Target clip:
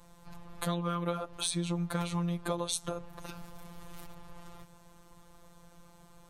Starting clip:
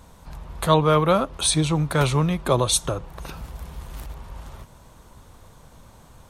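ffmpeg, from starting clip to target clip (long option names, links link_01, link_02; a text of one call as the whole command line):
ffmpeg -i in.wav -af "afftfilt=real='hypot(re,im)*cos(PI*b)':imag='0':win_size=1024:overlap=0.75,acompressor=threshold=-24dB:ratio=6,volume=-4dB" out.wav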